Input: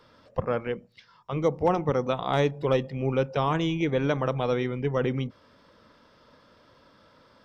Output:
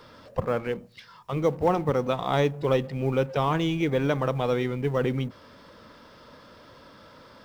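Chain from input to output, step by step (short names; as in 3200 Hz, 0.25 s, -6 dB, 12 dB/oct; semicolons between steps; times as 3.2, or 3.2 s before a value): G.711 law mismatch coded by mu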